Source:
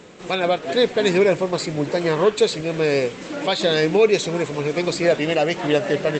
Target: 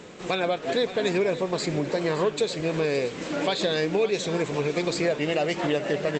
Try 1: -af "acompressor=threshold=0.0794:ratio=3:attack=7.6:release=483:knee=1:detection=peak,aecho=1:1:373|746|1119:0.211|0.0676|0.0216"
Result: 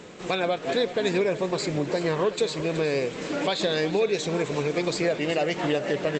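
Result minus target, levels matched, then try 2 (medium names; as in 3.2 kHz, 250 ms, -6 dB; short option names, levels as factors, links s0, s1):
echo 193 ms early
-af "acompressor=threshold=0.0794:ratio=3:attack=7.6:release=483:knee=1:detection=peak,aecho=1:1:566|1132|1698:0.211|0.0676|0.0216"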